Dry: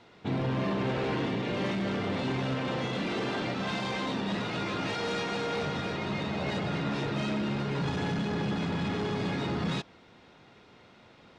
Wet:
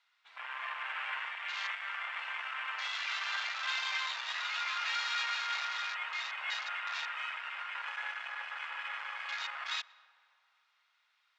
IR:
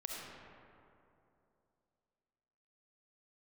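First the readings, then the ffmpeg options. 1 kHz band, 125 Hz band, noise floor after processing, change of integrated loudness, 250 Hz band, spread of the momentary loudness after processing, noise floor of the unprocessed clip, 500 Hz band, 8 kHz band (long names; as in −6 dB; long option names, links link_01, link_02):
−3.5 dB, below −40 dB, −75 dBFS, −4.5 dB, below −40 dB, 7 LU, −56 dBFS, −27.0 dB, −0.5 dB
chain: -filter_complex "[0:a]highpass=frequency=1200:width=0.5412,highpass=frequency=1200:width=1.3066,afwtdn=0.00794,asplit=2[link_01][link_02];[1:a]atrim=start_sample=2205,highshelf=frequency=3400:gain=-12,adelay=119[link_03];[link_02][link_03]afir=irnorm=-1:irlink=0,volume=-18.5dB[link_04];[link_01][link_04]amix=inputs=2:normalize=0,volume=3dB"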